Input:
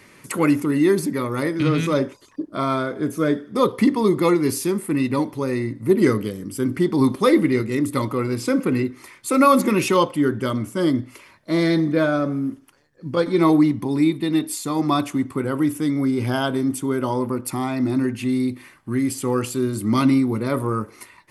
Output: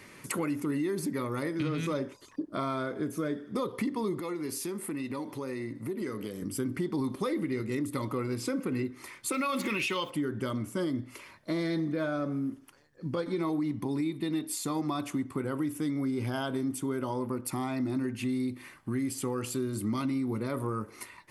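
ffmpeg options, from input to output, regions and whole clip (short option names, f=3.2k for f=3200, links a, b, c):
-filter_complex "[0:a]asettb=1/sr,asplit=3[a][b][c];[a]atrim=end=4.204[d];[b]atrim=start=4.2:end=6.42,asetpts=PTS-STARTPTS,afade=t=in:d=0.004:c=qsin,afade=t=out:st=2.216:d=0.004:c=qsin,highpass=f=210:p=1,acompressor=threshold=-32dB:ratio=2.5:attack=3.2:release=140:knee=1:detection=peak[e];[c]atrim=start=6.416[f];[d][e]acrossfade=d=0.004:c1=hsin:c2=qsin[g];[g][f]acrossfade=d=0.004:c1=qsin:c2=hsin,asettb=1/sr,asplit=3[h][i][j];[h]atrim=end=9.324[k];[i]atrim=start=9.32:end=10.1,asetpts=PTS-STARTPTS,afade=t=in:d=0.004:c=qsin,afade=t=out:st=0.776:d=0.004:c=qsin,equalizer=f=2.8k:t=o:w=1.6:g=15,acrusher=bits=8:dc=4:mix=0:aa=0.000001[l];[j]atrim=start=10.096[m];[k][l]acrossfade=d=0.004:c1=hsin:c2=qsin[n];[n][m]acrossfade=d=0.004:c1=qsin:c2=hsin,alimiter=limit=-12.5dB:level=0:latency=1:release=117,acompressor=threshold=-30dB:ratio=2.5,volume=-2dB"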